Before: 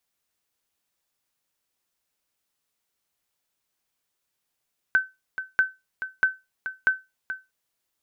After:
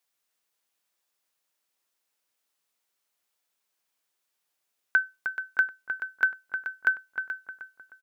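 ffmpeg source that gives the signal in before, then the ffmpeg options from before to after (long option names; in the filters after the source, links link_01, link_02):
-f lavfi -i "aevalsrc='0.266*(sin(2*PI*1530*mod(t,0.64))*exp(-6.91*mod(t,0.64)/0.22)+0.266*sin(2*PI*1530*max(mod(t,0.64)-0.43,0))*exp(-6.91*max(mod(t,0.64)-0.43,0)/0.22))':duration=2.56:sample_rate=44100"
-filter_complex "[0:a]highpass=frequency=410:poles=1,asplit=2[link_01][link_02];[link_02]adelay=309,lowpass=frequency=1600:poles=1,volume=-6dB,asplit=2[link_03][link_04];[link_04]adelay=309,lowpass=frequency=1600:poles=1,volume=0.44,asplit=2[link_05][link_06];[link_06]adelay=309,lowpass=frequency=1600:poles=1,volume=0.44,asplit=2[link_07][link_08];[link_08]adelay=309,lowpass=frequency=1600:poles=1,volume=0.44,asplit=2[link_09][link_10];[link_10]adelay=309,lowpass=frequency=1600:poles=1,volume=0.44[link_11];[link_01][link_03][link_05][link_07][link_09][link_11]amix=inputs=6:normalize=0"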